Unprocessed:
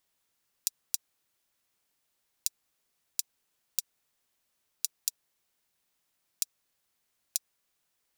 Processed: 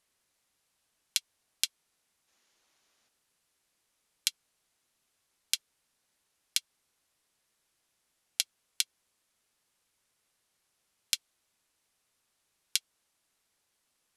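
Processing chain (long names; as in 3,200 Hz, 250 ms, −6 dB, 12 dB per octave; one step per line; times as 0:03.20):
wrong playback speed 78 rpm record played at 45 rpm
gain on a spectral selection 0:02.28–0:03.08, 200–7,300 Hz +6 dB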